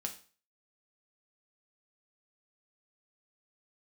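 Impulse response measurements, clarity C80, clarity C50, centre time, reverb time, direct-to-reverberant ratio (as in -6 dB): 16.5 dB, 12.0 dB, 11 ms, 0.40 s, 3.5 dB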